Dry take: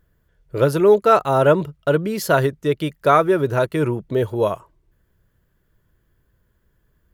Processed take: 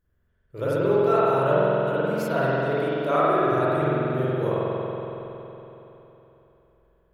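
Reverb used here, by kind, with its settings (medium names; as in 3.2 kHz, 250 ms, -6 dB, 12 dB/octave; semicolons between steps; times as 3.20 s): spring tank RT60 3.5 s, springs 46 ms, chirp 70 ms, DRR -10 dB; trim -14.5 dB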